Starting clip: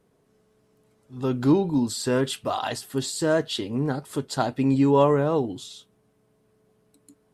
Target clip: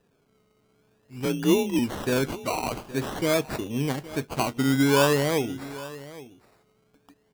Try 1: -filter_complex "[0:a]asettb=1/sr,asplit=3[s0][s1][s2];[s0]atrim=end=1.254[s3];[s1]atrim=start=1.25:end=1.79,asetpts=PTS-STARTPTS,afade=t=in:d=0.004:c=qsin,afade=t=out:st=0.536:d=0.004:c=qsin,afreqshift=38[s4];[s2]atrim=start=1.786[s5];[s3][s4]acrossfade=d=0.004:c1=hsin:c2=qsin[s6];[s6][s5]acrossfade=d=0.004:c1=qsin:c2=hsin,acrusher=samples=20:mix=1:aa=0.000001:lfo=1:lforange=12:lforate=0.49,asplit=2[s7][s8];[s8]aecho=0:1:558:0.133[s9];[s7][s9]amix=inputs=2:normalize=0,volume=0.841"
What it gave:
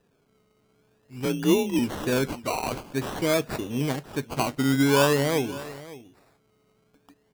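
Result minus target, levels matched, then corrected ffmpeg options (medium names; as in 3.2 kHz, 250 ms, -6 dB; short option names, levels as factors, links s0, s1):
echo 260 ms early
-filter_complex "[0:a]asettb=1/sr,asplit=3[s0][s1][s2];[s0]atrim=end=1.254[s3];[s1]atrim=start=1.25:end=1.79,asetpts=PTS-STARTPTS,afade=t=in:d=0.004:c=qsin,afade=t=out:st=0.536:d=0.004:c=qsin,afreqshift=38[s4];[s2]atrim=start=1.786[s5];[s3][s4]acrossfade=d=0.004:c1=hsin:c2=qsin[s6];[s6][s5]acrossfade=d=0.004:c1=qsin:c2=hsin,acrusher=samples=20:mix=1:aa=0.000001:lfo=1:lforange=12:lforate=0.49,asplit=2[s7][s8];[s8]aecho=0:1:818:0.133[s9];[s7][s9]amix=inputs=2:normalize=0,volume=0.841"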